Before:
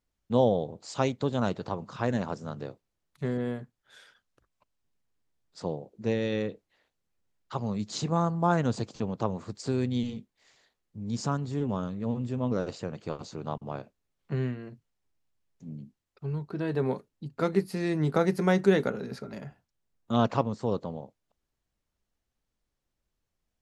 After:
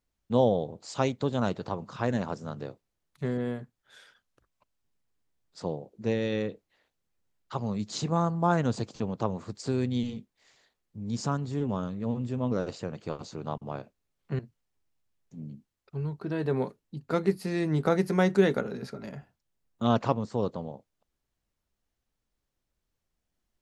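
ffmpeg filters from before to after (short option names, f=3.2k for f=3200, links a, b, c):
-filter_complex "[0:a]asplit=2[a][b];[a]atrim=end=14.392[c];[b]atrim=start=14.678[d];[c][d]acrossfade=d=0.004:c1=hsin:c2=hsin"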